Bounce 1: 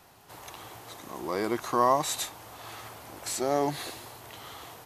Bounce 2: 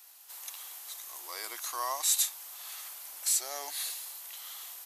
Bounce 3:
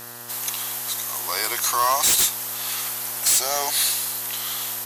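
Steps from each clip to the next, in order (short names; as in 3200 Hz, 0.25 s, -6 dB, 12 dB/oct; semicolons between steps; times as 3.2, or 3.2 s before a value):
HPF 490 Hz 12 dB/oct; differentiator; gain +6.5 dB
buzz 120 Hz, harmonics 16, -60 dBFS -1 dB/oct; sine folder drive 12 dB, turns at -13.5 dBFS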